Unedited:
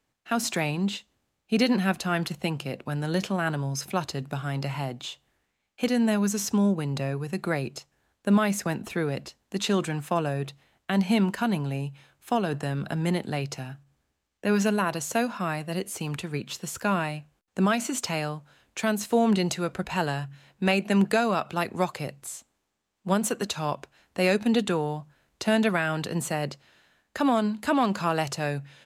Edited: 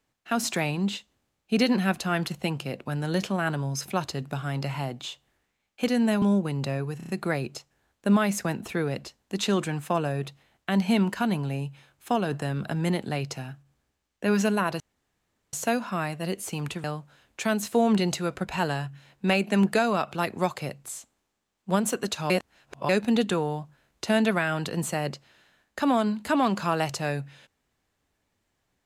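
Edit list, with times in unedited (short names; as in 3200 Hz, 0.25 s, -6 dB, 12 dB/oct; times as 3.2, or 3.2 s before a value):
6.22–6.55 cut
7.3 stutter 0.03 s, 5 plays
15.01 insert room tone 0.73 s
16.32–18.22 cut
23.68–24.27 reverse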